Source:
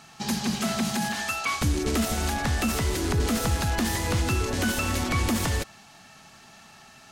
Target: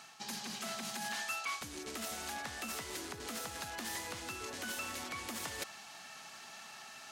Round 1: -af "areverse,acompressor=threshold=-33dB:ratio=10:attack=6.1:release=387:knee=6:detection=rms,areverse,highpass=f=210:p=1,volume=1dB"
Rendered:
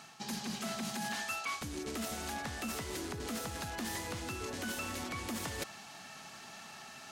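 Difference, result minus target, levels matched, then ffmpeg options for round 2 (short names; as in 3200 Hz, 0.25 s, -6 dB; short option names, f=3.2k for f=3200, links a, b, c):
250 Hz band +5.5 dB
-af "areverse,acompressor=threshold=-33dB:ratio=10:attack=6.1:release=387:knee=6:detection=rms,areverse,highpass=f=710:p=1,volume=1dB"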